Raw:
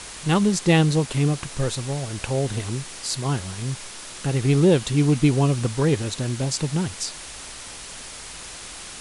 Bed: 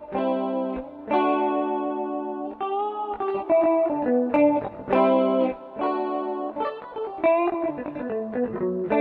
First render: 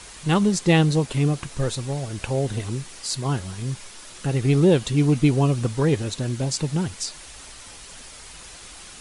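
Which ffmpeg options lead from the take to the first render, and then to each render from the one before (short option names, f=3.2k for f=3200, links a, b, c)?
-af "afftdn=nr=6:nf=-38"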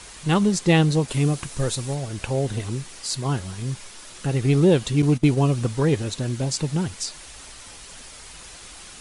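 -filter_complex "[0:a]asettb=1/sr,asplit=3[a][b][c];[a]atrim=end=1.084[d];[b]atrim=start=1.08:end=1.95,asetpts=PTS-STARTPTS,afade=t=in:d=0.004:c=qsin,afade=t=out:st=0.866:d=0.004:c=qsin,highshelf=f=7.1k:g=8[e];[c]atrim=start=1.946[f];[d][e]acrossfade=d=0.004:c1=hsin:c2=qsin[g];[g][f]acrossfade=d=0.004:c1=qsin:c2=hsin,asettb=1/sr,asplit=3[h][i][j];[h]atrim=end=5.024[k];[i]atrim=start=5.02:end=5.42,asetpts=PTS-STARTPTS,afade=t=in:d=0.004:c=qsin,afade=t=out:st=0.396:d=0.004:c=qsin,agate=range=-15dB:threshold=-24dB:ratio=16:release=100:detection=peak[l];[j]atrim=start=5.416[m];[k][l]acrossfade=d=0.004:c1=hsin:c2=qsin[n];[n][m]acrossfade=d=0.004:c1=qsin:c2=hsin"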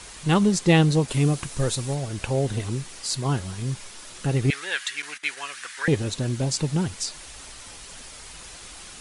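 -filter_complex "[0:a]asettb=1/sr,asplit=3[a][b][c];[a]atrim=end=4.504[d];[b]atrim=start=4.5:end=5.88,asetpts=PTS-STARTPTS,afade=t=in:d=0.004:c=qsin,afade=t=out:st=1.376:d=0.004:c=qsin,highpass=f=1.7k:t=q:w=3.9[e];[c]atrim=start=5.876[f];[d][e]acrossfade=d=0.004:c1=hsin:c2=qsin[g];[g][f]acrossfade=d=0.004:c1=qsin:c2=hsin"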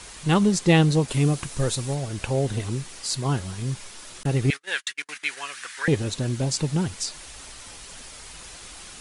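-filter_complex "[0:a]asettb=1/sr,asplit=3[a][b][c];[a]atrim=end=4.234[d];[b]atrim=start=4.23:end=5.09,asetpts=PTS-STARTPTS,afade=t=in:d=0.004:c=qsin,afade=t=out:st=0.856:d=0.004:c=qsin,agate=range=-43dB:threshold=-33dB:ratio=16:release=100:detection=peak[e];[c]atrim=start=5.086[f];[d][e]acrossfade=d=0.004:c1=hsin:c2=qsin[g];[g][f]acrossfade=d=0.004:c1=qsin:c2=hsin"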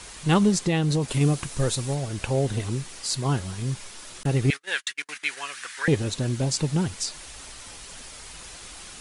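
-filter_complex "[0:a]asettb=1/sr,asplit=3[a][b][c];[a]atrim=end=0.564[d];[b]atrim=start=0.56:end=1.21,asetpts=PTS-STARTPTS,afade=t=in:d=0.004:c=qsin,afade=t=out:st=0.646:d=0.004:c=qsin,acompressor=threshold=-18dB:ratio=10:attack=3.2:release=140:knee=1:detection=peak[e];[c]atrim=start=1.206[f];[d][e]acrossfade=d=0.004:c1=hsin:c2=qsin[g];[g][f]acrossfade=d=0.004:c1=qsin:c2=hsin"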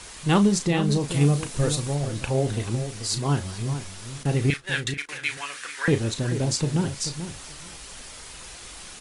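-filter_complex "[0:a]asplit=2[a][b];[b]adelay=35,volume=-10dB[c];[a][c]amix=inputs=2:normalize=0,asplit=2[d][e];[e]adelay=436,lowpass=f=1.7k:p=1,volume=-10dB,asplit=2[f][g];[g]adelay=436,lowpass=f=1.7k:p=1,volume=0.17[h];[d][f][h]amix=inputs=3:normalize=0"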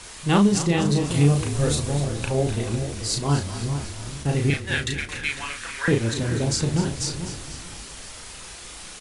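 -filter_complex "[0:a]asplit=2[a][b];[b]adelay=35,volume=-9dB[c];[a][c]amix=inputs=2:normalize=0,asplit=8[d][e][f][g][h][i][j][k];[e]adelay=249,afreqshift=-33,volume=-12dB[l];[f]adelay=498,afreqshift=-66,volume=-16.3dB[m];[g]adelay=747,afreqshift=-99,volume=-20.6dB[n];[h]adelay=996,afreqshift=-132,volume=-24.9dB[o];[i]adelay=1245,afreqshift=-165,volume=-29.2dB[p];[j]adelay=1494,afreqshift=-198,volume=-33.5dB[q];[k]adelay=1743,afreqshift=-231,volume=-37.8dB[r];[d][l][m][n][o][p][q][r]amix=inputs=8:normalize=0"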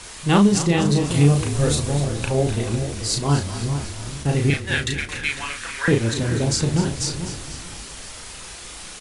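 -af "volume=2.5dB"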